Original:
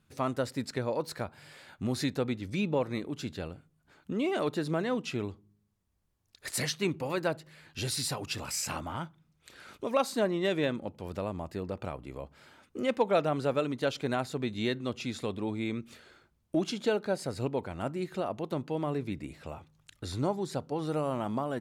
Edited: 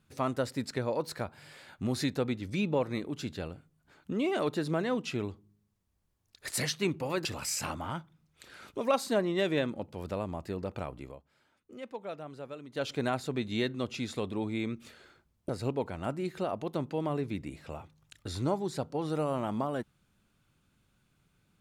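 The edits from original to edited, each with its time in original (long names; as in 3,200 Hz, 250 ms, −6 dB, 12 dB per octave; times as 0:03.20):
0:07.25–0:08.31: remove
0:12.06–0:13.96: duck −14 dB, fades 0.21 s
0:16.55–0:17.26: remove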